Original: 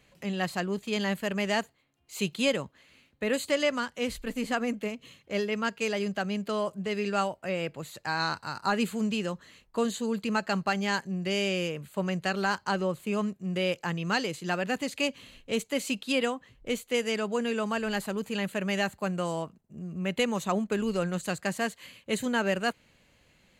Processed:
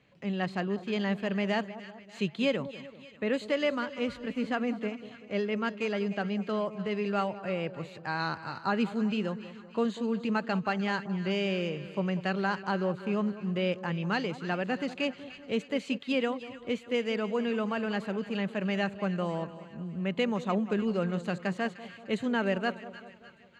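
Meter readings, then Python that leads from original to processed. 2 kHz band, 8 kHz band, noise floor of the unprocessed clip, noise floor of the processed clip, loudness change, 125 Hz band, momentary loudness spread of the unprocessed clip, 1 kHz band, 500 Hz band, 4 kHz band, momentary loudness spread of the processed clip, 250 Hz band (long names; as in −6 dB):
−3.0 dB, below −15 dB, −65 dBFS, −51 dBFS, −1.5 dB, +0.5 dB, 7 LU, −2.0 dB, −1.0 dB, −5.0 dB, 7 LU, +0.5 dB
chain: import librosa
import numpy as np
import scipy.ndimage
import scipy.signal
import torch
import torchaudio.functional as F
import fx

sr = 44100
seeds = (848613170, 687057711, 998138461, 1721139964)

y = fx.bandpass_edges(x, sr, low_hz=100.0, high_hz=3700.0)
y = fx.low_shelf(y, sr, hz=390.0, db=4.5)
y = fx.echo_split(y, sr, split_hz=1200.0, low_ms=192, high_ms=301, feedback_pct=52, wet_db=-14)
y = F.gain(torch.from_numpy(y), -3.0).numpy()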